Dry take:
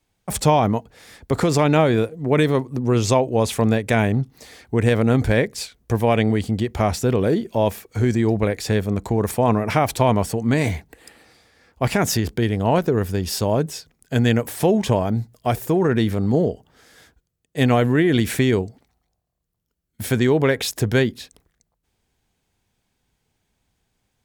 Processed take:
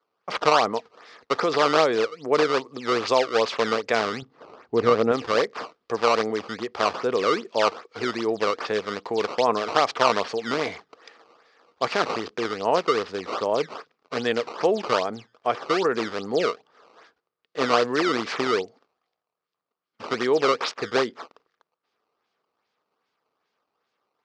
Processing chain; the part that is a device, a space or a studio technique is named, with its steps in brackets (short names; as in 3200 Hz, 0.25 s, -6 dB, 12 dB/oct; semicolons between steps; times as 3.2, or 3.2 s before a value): circuit-bent sampling toy (decimation with a swept rate 15×, swing 160% 2.5 Hz; speaker cabinet 400–5500 Hz, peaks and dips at 460 Hz +5 dB, 1200 Hz +9 dB, 4800 Hz +4 dB); 4.22–5.12 tilt -2.5 dB/oct; gain -3 dB